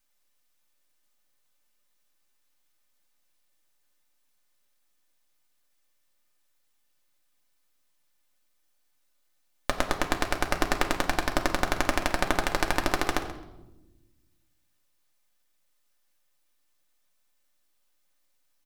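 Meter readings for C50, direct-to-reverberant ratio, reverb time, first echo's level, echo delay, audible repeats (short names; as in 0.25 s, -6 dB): 9.0 dB, 1.5 dB, 1.0 s, -14.5 dB, 0.132 s, 2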